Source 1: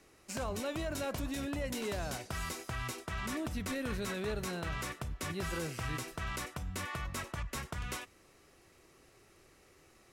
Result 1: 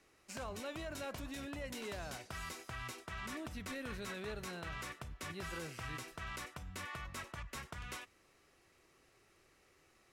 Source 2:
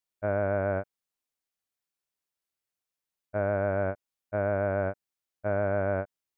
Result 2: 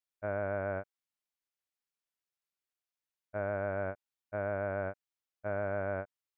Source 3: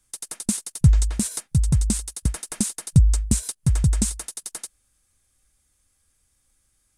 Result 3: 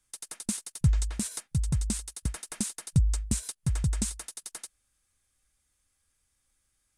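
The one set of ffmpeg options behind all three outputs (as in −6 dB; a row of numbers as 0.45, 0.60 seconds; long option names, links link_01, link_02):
-af "equalizer=frequency=2100:width=0.39:gain=4.5,volume=-8.5dB"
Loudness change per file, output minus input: −6.5, −7.0, −8.0 LU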